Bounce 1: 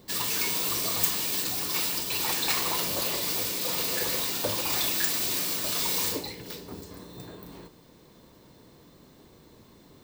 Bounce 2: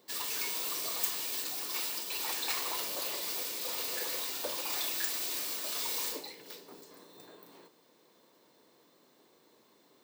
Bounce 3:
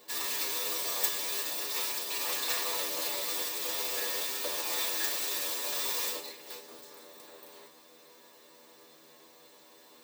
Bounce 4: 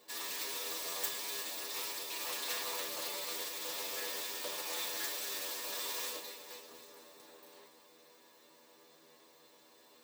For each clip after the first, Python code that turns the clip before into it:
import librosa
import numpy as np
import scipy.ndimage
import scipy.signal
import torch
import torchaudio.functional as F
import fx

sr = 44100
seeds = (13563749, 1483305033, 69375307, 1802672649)

y1 = scipy.signal.sosfilt(scipy.signal.butter(2, 360.0, 'highpass', fs=sr, output='sos'), x)
y1 = y1 * librosa.db_to_amplitude(-7.0)
y2 = fx.bin_compress(y1, sr, power=0.6)
y2 = fx.stiff_resonator(y2, sr, f0_hz=79.0, decay_s=0.26, stiffness=0.002)
y2 = fx.upward_expand(y2, sr, threshold_db=-50.0, expansion=1.5)
y2 = y2 * librosa.db_to_amplitude(9.0)
y3 = fx.echo_feedback(y2, sr, ms=246, feedback_pct=53, wet_db=-11.5)
y3 = fx.doppler_dist(y3, sr, depth_ms=0.1)
y3 = y3 * librosa.db_to_amplitude(-5.5)